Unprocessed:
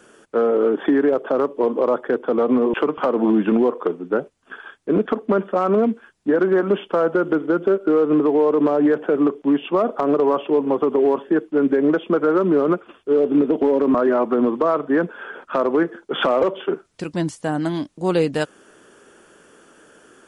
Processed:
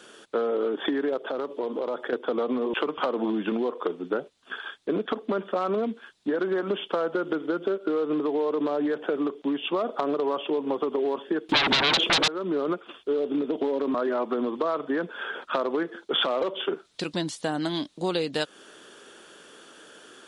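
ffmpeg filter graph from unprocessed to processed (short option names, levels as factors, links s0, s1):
-filter_complex "[0:a]asettb=1/sr,asplit=3[s0][s1][s2];[s0]atrim=end=1.174[s3];[s1]atrim=start=1.17:end=2.13,asetpts=PTS-STARTPTS,afade=t=in:d=0.004:c=qsin,afade=t=out:st=0.956:d=0.004:c=qsin,acompressor=threshold=0.0501:ratio=3:attack=3.2:release=140:knee=1:detection=peak,bandreject=f=1100:w=18[s4];[s2]atrim=start=2.126[s5];[s3][s4]acrossfade=d=0.004:c1=hsin:c2=qsin[s6];[s6][s5]acrossfade=d=0.004:c1=qsin:c2=hsin,asettb=1/sr,asplit=3[s7][s8][s9];[s7]atrim=end=11.494[s10];[s8]atrim=start=11.49:end=12.28,asetpts=PTS-STARTPTS,afade=t=in:d=0.004:c=qsin,afade=t=out:st=0.786:d=0.004:c=qsin,acontrast=89,aeval=exprs='0.631*sin(PI/2*5.62*val(0)/0.631)':c=same[s11];[s9]atrim=start=12.276[s12];[s10][s11]acrossfade=d=0.004:c1=hsin:c2=qsin[s13];[s13][s12]acrossfade=d=0.004:c1=qsin:c2=hsin,equalizer=f=3800:t=o:w=0.7:g=13,acompressor=threshold=0.0708:ratio=4,lowshelf=f=140:g=-11.5"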